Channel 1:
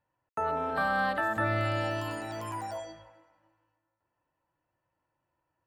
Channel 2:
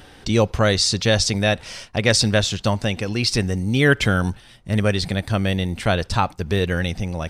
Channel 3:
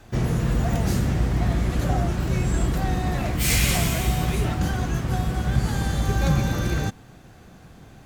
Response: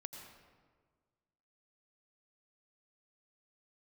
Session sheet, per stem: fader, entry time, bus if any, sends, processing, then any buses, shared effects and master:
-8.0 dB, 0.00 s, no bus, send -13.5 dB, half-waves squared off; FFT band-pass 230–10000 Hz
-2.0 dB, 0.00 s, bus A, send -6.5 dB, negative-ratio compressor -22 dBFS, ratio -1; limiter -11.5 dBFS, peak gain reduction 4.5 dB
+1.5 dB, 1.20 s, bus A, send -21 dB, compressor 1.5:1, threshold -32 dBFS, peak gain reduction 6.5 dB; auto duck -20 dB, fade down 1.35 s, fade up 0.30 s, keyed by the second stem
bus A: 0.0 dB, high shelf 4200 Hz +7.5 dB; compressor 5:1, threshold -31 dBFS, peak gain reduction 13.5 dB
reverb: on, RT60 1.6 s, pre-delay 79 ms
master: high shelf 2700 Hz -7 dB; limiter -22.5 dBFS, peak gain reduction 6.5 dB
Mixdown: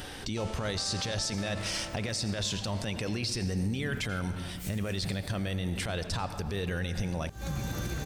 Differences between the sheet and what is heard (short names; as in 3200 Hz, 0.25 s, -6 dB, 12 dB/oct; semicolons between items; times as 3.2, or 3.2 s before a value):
stem 1 -8.0 dB -> -16.5 dB; stem 3: send off; master: missing high shelf 2700 Hz -7 dB